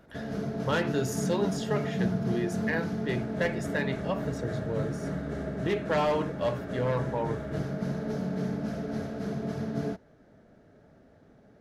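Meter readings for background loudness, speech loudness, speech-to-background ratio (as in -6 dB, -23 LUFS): -33.5 LUFS, -32.5 LUFS, 1.0 dB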